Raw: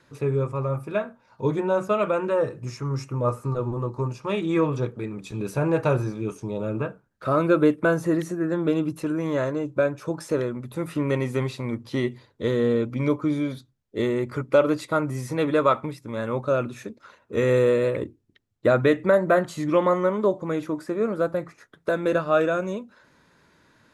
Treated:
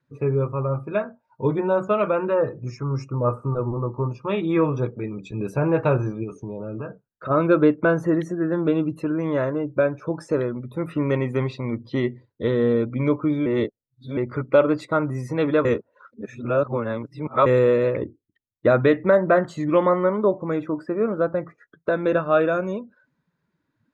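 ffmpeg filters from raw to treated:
-filter_complex "[0:a]asplit=3[s0][s1][s2];[s0]afade=t=out:st=6.23:d=0.02[s3];[s1]acompressor=threshold=0.0355:ratio=6:attack=3.2:release=140:knee=1:detection=peak,afade=t=in:st=6.23:d=0.02,afade=t=out:st=7.29:d=0.02[s4];[s2]afade=t=in:st=7.29:d=0.02[s5];[s3][s4][s5]amix=inputs=3:normalize=0,asplit=5[s6][s7][s8][s9][s10];[s6]atrim=end=13.462[s11];[s7]atrim=start=13.458:end=14.172,asetpts=PTS-STARTPTS,areverse[s12];[s8]atrim=start=14.168:end=15.652[s13];[s9]atrim=start=15.648:end=17.462,asetpts=PTS-STARTPTS,areverse[s14];[s10]atrim=start=17.458[s15];[s11][s12]acrossfade=d=0.004:c1=hsin:c2=hsin[s16];[s16][s13]acrossfade=d=0.004:c1=hsin:c2=hsin[s17];[s17][s14]acrossfade=d=0.004:c1=hsin:c2=hsin[s18];[s18][s15]acrossfade=d=0.004:c1=hsin:c2=hsin,afftdn=nr=21:nf=-46,highshelf=f=5100:g=-9.5,volume=1.26"

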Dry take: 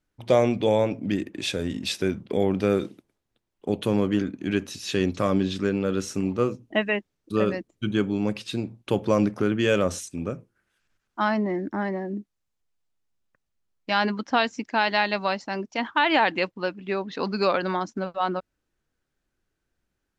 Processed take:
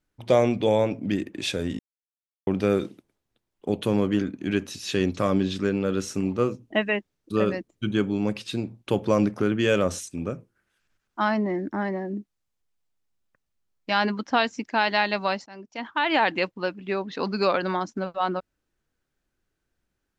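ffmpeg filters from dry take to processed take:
-filter_complex "[0:a]asplit=4[s0][s1][s2][s3];[s0]atrim=end=1.79,asetpts=PTS-STARTPTS,afade=t=out:st=1.786:d=0.004:c=hsin[s4];[s1]atrim=start=1.79:end=2.47,asetpts=PTS-STARTPTS,volume=0[s5];[s2]atrim=start=2.47:end=15.46,asetpts=PTS-STARTPTS,afade=t=in:d=0.004:c=hsin,afade=t=out:st=12.986:d=0.004:c=hsin:silence=0.133352[s6];[s3]atrim=start=15.46,asetpts=PTS-STARTPTS,afade=t=in:d=0.84:silence=0.133352[s7];[s4][s5][s6][s7]concat=n=4:v=0:a=1"

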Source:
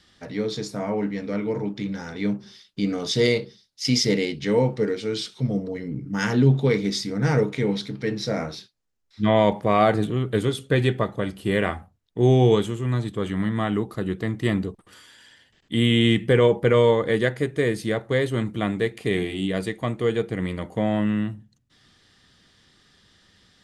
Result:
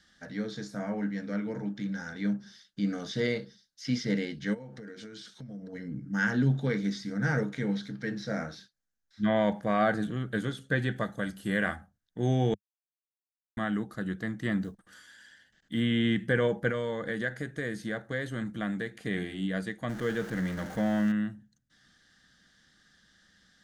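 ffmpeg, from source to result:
-filter_complex "[0:a]asplit=3[s0][s1][s2];[s0]afade=t=out:st=4.53:d=0.02[s3];[s1]acompressor=threshold=0.0282:ratio=20:attack=3.2:release=140:knee=1:detection=peak,afade=t=in:st=4.53:d=0.02,afade=t=out:st=5.72:d=0.02[s4];[s2]afade=t=in:st=5.72:d=0.02[s5];[s3][s4][s5]amix=inputs=3:normalize=0,asettb=1/sr,asplit=3[s6][s7][s8];[s6]atrim=end=10.964[s9];[s7]atrim=start=10.96:end=11.76,asetpts=PTS-STARTPTS,afade=t=in:d=0.004:c=qsin,afade=t=out:st=0.796:d=0.004:c=qsin,highshelf=f=6100:g=11[s10];[s8]atrim=start=11.756[s11];[s9][s10]acrossfade=d=0.004:c1=hsin:c2=qsin[s12];[s12][s11]acrossfade=d=0.004:c1=qsin:c2=hsin,asplit=3[s13][s14][s15];[s13]afade=t=out:st=14.61:d=0.02[s16];[s14]acrusher=bits=9:mode=log:mix=0:aa=0.000001,afade=t=in:st=14.61:d=0.02,afade=t=out:st=15.8:d=0.02[s17];[s15]afade=t=in:st=15.8:d=0.02[s18];[s16][s17][s18]amix=inputs=3:normalize=0,asettb=1/sr,asplit=3[s19][s20][s21];[s19]atrim=end=16.704[s22];[s20]atrim=start=16.7:end=19,asetpts=PTS-STARTPTS,afade=t=in:d=0.004:c=qsin,afade=t=out:st=2.296:d=0.004:c=qsin,acompressor=threshold=0.0891:ratio=2.5:attack=3.2:release=140:knee=1:detection=peak[s23];[s21]atrim=start=18.996[s24];[s22][s23]acrossfade=d=0.004:c1=hsin:c2=qsin[s25];[s25][s24]acrossfade=d=0.004:c1=qsin:c2=hsin,asettb=1/sr,asplit=3[s26][s27][s28];[s26]atrim=end=19.894[s29];[s27]atrim=start=19.89:end=21.12,asetpts=PTS-STARTPTS,afade=t=in:d=0.004:c=qsin,afade=t=out:st=1.226:d=0.004:c=qsin,aeval=exprs='val(0)+0.5*0.0335*sgn(val(0))':c=same[s30];[s28]atrim=start=21.116[s31];[s29][s30]acrossfade=d=0.004:c1=hsin:c2=qsin[s32];[s32][s31]acrossfade=d=0.004:c1=qsin:c2=hsin,asplit=3[s33][s34][s35];[s33]atrim=end=12.54,asetpts=PTS-STARTPTS,afade=t=out:st=12.536:d=0.004:c=hsin[s36];[s34]atrim=start=12.54:end=13.57,asetpts=PTS-STARTPTS,volume=0[s37];[s35]atrim=start=13.57,asetpts=PTS-STARTPTS,afade=t=in:d=0.004:c=hsin[s38];[s36][s37][s38]concat=n=3:v=0:a=1,acrossover=split=3500[s39][s40];[s40]acompressor=threshold=0.00708:ratio=4:attack=1:release=60[s41];[s39][s41]amix=inputs=2:normalize=0,equalizer=f=100:t=o:w=0.33:g=-10,equalizer=f=200:t=o:w=0.33:g=4,equalizer=f=400:t=o:w=0.33:g=-9,equalizer=f=1000:t=o:w=0.33:g=-6,equalizer=f=1600:t=o:w=0.33:g=11,equalizer=f=2500:t=o:w=0.33:g=-7,equalizer=f=6300:t=o:w=0.33:g=5,volume=0.447"

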